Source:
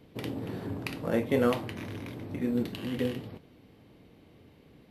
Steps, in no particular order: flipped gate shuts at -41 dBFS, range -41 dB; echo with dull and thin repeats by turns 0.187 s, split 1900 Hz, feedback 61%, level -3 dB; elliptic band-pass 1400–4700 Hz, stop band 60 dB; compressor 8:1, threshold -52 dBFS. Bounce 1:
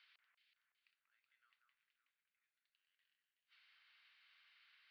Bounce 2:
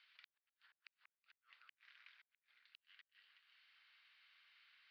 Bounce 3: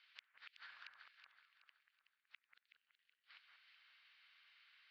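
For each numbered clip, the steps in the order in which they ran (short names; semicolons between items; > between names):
flipped gate > echo with dull and thin repeats by turns > compressor > elliptic band-pass; compressor > echo with dull and thin repeats by turns > flipped gate > elliptic band-pass; elliptic band-pass > flipped gate > compressor > echo with dull and thin repeats by turns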